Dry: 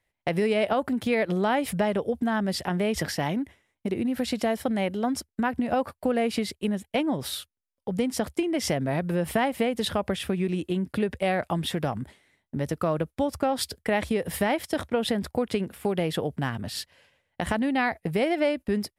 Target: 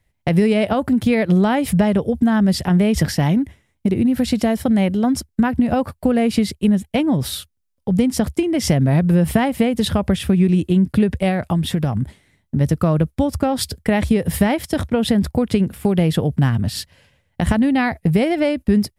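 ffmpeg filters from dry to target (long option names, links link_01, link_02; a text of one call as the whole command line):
ffmpeg -i in.wav -filter_complex "[0:a]bass=frequency=250:gain=13,treble=frequency=4000:gain=3,asettb=1/sr,asplit=3[link_01][link_02][link_03];[link_01]atrim=end=11.284[link_04];[link_02]atrim=start=11.28:end=12.61,asetpts=PTS-STARTPTS,afade=type=in:duration=0.004:curve=qsin,afade=type=out:start_time=1.326:duration=0.004:curve=qsin,acompressor=threshold=-19dB:ratio=6[link_05];[link_03]atrim=start=12.606[link_06];[link_04][link_05]acrossfade=duration=0.004:curve1=hsin:curve2=qsin[link_07];[link_07][link_06]acrossfade=duration=0.004:curve1=qsin:curve2=hsin,volume=4dB" out.wav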